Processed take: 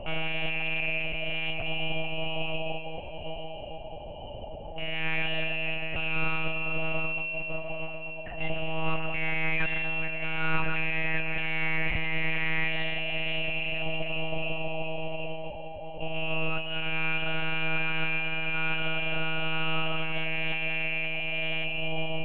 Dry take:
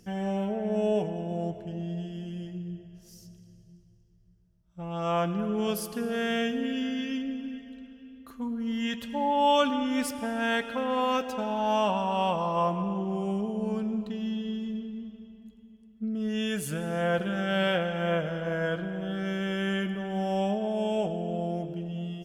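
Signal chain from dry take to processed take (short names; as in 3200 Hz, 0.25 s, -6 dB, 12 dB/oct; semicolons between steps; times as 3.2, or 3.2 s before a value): inverted band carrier 3000 Hz; rotary speaker horn 1.1 Hz; overdrive pedal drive 25 dB, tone 2100 Hz, clips at -15.5 dBFS; band noise 460–840 Hz -41 dBFS; monotone LPC vocoder at 8 kHz 160 Hz; tilt -3 dB/oct; thin delay 0.22 s, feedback 76%, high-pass 1800 Hz, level -15.5 dB; gain -3 dB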